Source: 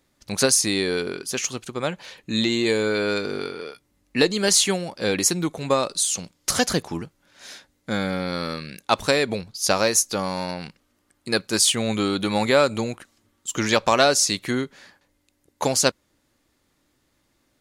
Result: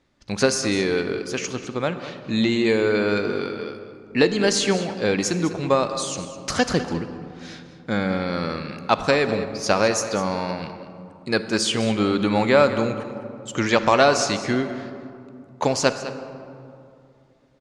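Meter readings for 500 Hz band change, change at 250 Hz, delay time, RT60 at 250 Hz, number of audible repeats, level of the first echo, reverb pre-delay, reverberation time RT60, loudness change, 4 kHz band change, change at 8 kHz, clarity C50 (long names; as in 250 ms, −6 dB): +2.5 dB, +3.0 dB, 203 ms, 3.1 s, 1, −14.0 dB, 33 ms, 2.6 s, 0.0 dB, −3.0 dB, −7.0 dB, 9.0 dB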